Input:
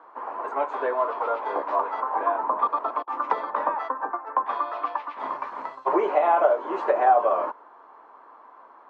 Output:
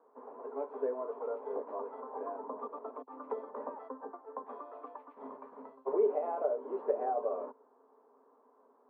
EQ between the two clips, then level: two resonant band-passes 330 Hz, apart 0.7 oct; 0.0 dB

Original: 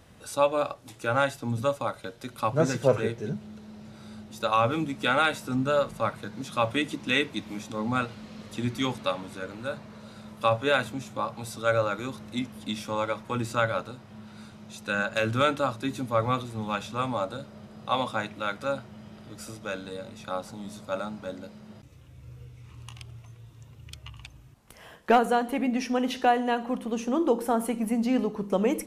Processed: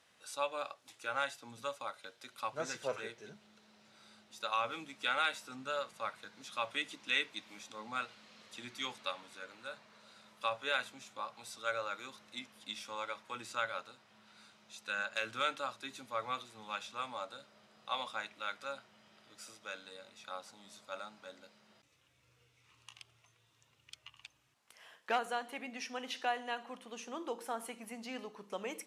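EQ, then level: band-pass filter 5.7 kHz, Q 0.52; treble shelf 3.2 kHz -8.5 dB; 0.0 dB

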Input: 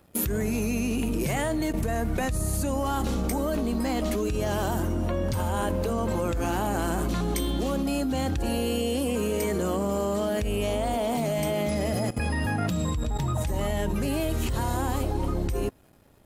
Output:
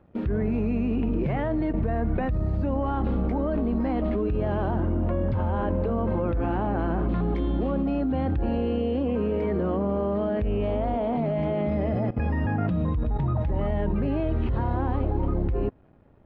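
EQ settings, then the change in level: distance through air 360 m; tape spacing loss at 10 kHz 26 dB; +3.0 dB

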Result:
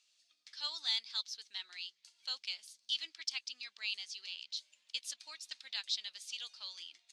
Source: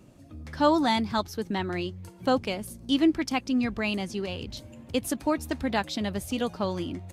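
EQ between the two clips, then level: ladder band-pass 5.1 kHz, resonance 35%; distance through air 68 m; tilt EQ +1.5 dB/octave; +8.5 dB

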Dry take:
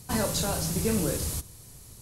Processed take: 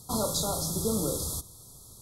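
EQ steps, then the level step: brick-wall FIR band-stop 1.4–3.2 kHz; bass shelf 230 Hz -5.5 dB; 0.0 dB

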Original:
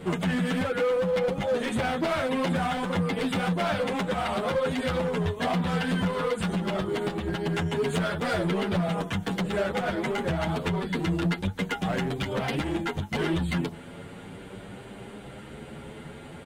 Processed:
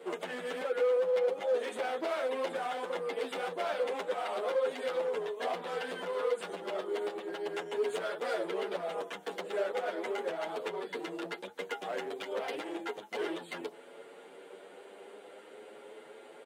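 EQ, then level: ladder high-pass 370 Hz, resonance 45%; 0.0 dB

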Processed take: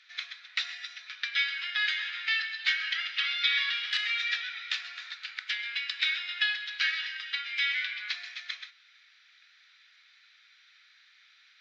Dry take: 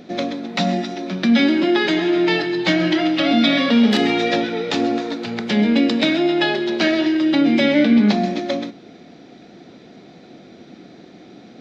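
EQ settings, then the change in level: steep high-pass 1.5 kHz 36 dB/octave; distance through air 170 m; treble shelf 4.3 kHz +5 dB; -3.5 dB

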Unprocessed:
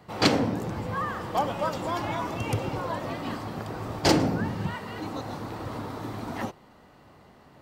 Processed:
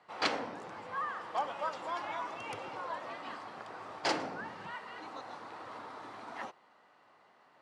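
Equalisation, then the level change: high-pass 1.2 kHz 12 dB/octave; elliptic low-pass 11 kHz, stop band 40 dB; tilt EQ -4.5 dB/octave; 0.0 dB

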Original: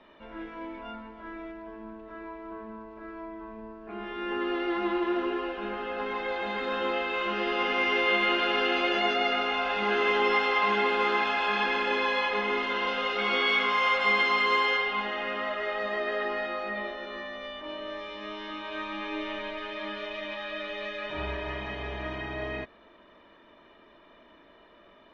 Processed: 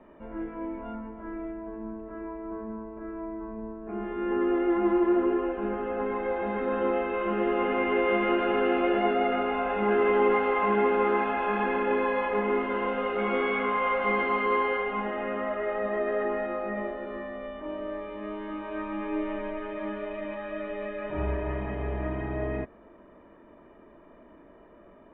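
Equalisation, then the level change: low-pass 2.5 kHz 24 dB/octave; tilt shelf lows +7.5 dB; 0.0 dB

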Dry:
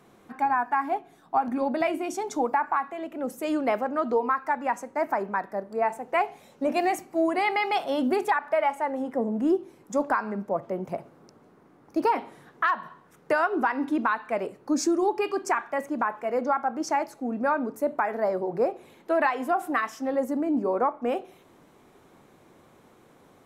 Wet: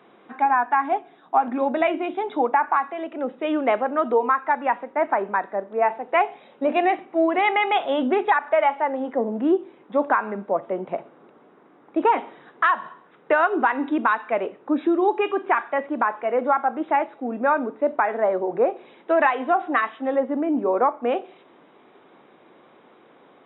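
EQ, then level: high-pass 270 Hz 12 dB/octave; brick-wall FIR low-pass 3.9 kHz; +5.0 dB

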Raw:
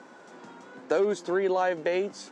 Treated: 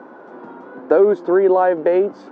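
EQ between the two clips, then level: low-pass 3.6 kHz 12 dB/octave; tilt EQ -2 dB/octave; high-order bell 630 Hz +9.5 dB 2.9 oct; 0.0 dB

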